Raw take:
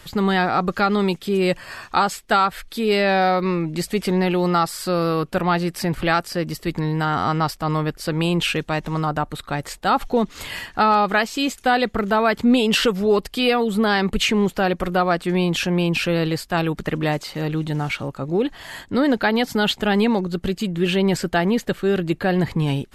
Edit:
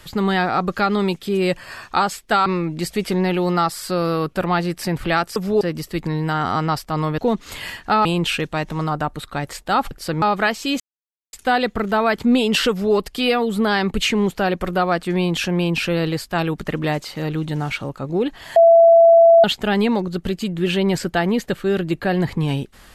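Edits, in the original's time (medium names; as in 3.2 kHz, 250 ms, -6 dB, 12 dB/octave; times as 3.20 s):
2.46–3.43 s: delete
7.90–8.21 s: swap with 10.07–10.94 s
11.52 s: insert silence 0.53 s
12.89–13.14 s: copy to 6.33 s
18.75–19.63 s: bleep 669 Hz -6.5 dBFS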